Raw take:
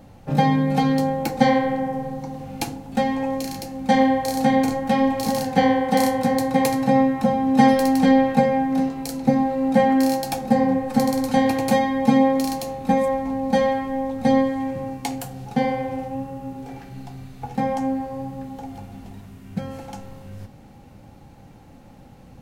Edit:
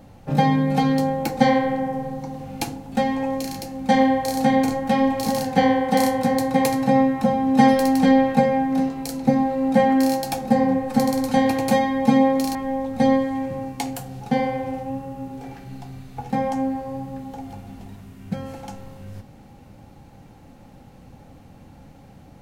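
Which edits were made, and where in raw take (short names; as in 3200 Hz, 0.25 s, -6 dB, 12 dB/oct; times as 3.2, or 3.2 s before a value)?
12.55–13.8 cut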